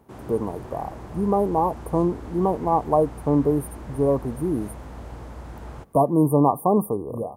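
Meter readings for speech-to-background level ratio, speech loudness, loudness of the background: 16.5 dB, -23.0 LUFS, -39.5 LUFS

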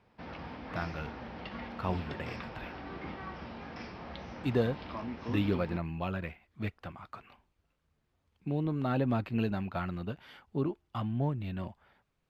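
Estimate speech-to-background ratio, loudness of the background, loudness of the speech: 8.0 dB, -43.0 LUFS, -35.0 LUFS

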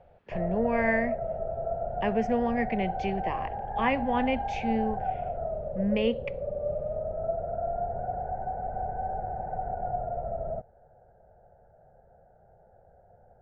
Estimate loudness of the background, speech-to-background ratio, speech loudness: -33.5 LUFS, 3.5 dB, -30.0 LUFS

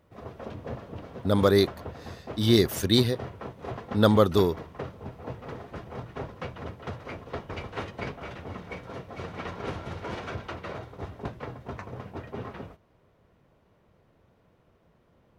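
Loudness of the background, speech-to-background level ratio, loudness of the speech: -39.0 LUFS, 15.5 dB, -23.5 LUFS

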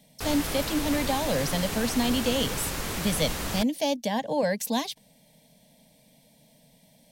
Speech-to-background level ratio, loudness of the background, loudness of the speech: 3.5 dB, -31.5 LUFS, -28.0 LUFS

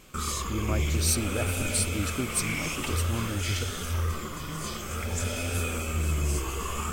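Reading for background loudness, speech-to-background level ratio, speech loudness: -30.5 LUFS, -1.0 dB, -31.5 LUFS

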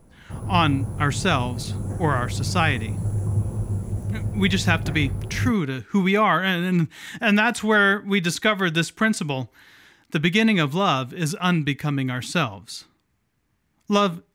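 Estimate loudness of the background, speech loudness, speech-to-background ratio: -28.0 LUFS, -22.0 LUFS, 6.0 dB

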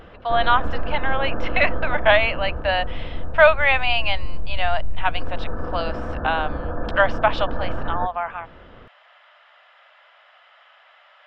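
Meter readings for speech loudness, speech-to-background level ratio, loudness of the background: -22.0 LUFS, 9.5 dB, -31.5 LUFS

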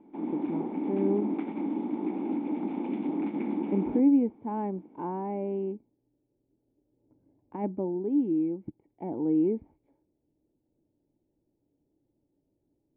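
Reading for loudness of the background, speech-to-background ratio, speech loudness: -32.5 LUFS, 2.5 dB, -30.0 LUFS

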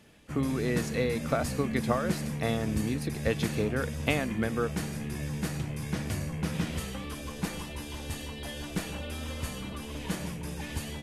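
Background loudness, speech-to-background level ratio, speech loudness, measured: -35.5 LUFS, 4.0 dB, -31.5 LUFS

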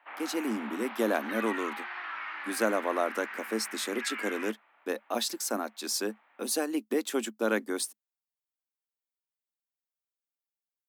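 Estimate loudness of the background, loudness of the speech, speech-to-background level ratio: -38.5 LUFS, -32.0 LUFS, 6.5 dB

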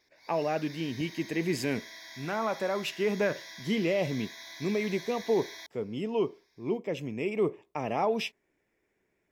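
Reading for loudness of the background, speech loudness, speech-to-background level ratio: -44.5 LUFS, -32.0 LUFS, 12.5 dB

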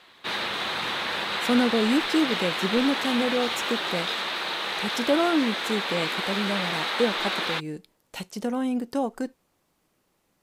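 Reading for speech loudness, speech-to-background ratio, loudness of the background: -27.5 LUFS, 0.0 dB, -27.5 LUFS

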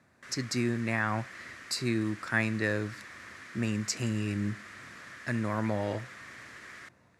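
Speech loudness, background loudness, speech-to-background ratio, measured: -32.0 LUFS, -46.5 LUFS, 14.5 dB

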